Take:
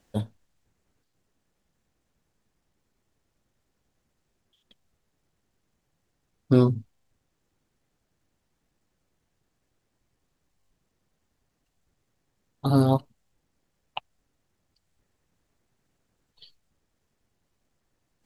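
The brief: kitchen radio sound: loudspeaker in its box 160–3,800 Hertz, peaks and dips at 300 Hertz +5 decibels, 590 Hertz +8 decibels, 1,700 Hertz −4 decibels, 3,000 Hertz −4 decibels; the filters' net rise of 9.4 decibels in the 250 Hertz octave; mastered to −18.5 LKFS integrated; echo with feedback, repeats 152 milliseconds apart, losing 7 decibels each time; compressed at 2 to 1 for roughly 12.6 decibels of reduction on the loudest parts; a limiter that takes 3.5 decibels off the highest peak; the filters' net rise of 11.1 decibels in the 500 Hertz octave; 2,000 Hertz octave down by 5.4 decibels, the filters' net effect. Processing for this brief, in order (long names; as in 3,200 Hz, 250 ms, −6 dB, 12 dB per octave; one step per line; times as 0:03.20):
parametric band 250 Hz +6 dB
parametric band 500 Hz +9 dB
parametric band 2,000 Hz −6.5 dB
downward compressor 2 to 1, threshold −30 dBFS
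brickwall limiter −15.5 dBFS
loudspeaker in its box 160–3,800 Hz, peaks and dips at 300 Hz +5 dB, 590 Hz +8 dB, 1,700 Hz −4 dB, 3,000 Hz −4 dB
repeating echo 152 ms, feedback 45%, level −7 dB
level +11.5 dB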